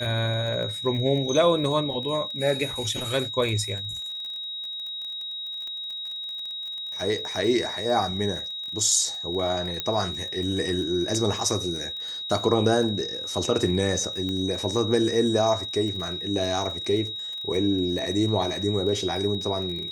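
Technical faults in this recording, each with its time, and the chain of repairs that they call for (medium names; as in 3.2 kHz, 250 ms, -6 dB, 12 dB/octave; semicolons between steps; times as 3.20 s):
crackle 30 per s -33 dBFS
whine 3.8 kHz -31 dBFS
9.80 s: pop -11 dBFS
14.29 s: pop -19 dBFS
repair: de-click; band-stop 3.8 kHz, Q 30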